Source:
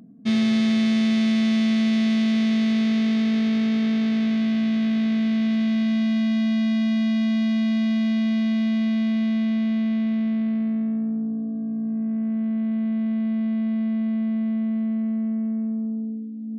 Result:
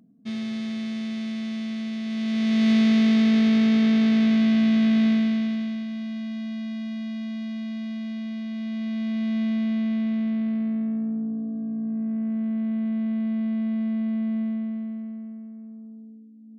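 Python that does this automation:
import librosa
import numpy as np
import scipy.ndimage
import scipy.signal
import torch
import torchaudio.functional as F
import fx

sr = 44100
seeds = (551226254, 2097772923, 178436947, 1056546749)

y = fx.gain(x, sr, db=fx.line((2.03, -10.0), (2.7, 2.5), (5.08, 2.5), (5.87, -10.0), (8.48, -10.0), (9.42, -2.0), (14.41, -2.0), (15.52, -15.0)))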